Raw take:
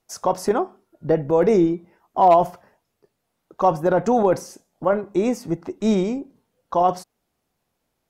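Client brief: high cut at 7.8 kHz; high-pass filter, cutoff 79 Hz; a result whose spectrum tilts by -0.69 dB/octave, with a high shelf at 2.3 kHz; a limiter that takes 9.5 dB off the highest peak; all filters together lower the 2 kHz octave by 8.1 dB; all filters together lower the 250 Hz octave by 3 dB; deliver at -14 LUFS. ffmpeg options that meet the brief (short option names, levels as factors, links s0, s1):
-af "highpass=79,lowpass=7800,equalizer=f=250:t=o:g=-4,equalizer=f=2000:t=o:g=-7.5,highshelf=f=2300:g=-9,volume=4.73,alimiter=limit=0.708:level=0:latency=1"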